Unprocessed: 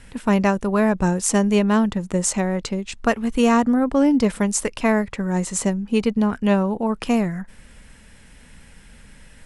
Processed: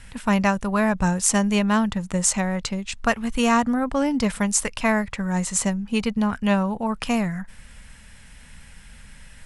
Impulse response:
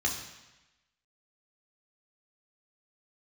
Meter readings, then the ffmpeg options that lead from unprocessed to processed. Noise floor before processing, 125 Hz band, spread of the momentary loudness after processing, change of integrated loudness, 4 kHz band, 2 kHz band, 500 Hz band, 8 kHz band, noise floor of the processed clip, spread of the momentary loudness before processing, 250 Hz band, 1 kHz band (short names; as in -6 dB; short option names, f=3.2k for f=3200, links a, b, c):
-48 dBFS, -1.5 dB, 6 LU, -2.0 dB, +2.0 dB, +1.5 dB, -4.5 dB, +2.0 dB, -46 dBFS, 6 LU, -3.0 dB, 0.0 dB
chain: -af "equalizer=f=360:t=o:w=1.3:g=-11,volume=2dB"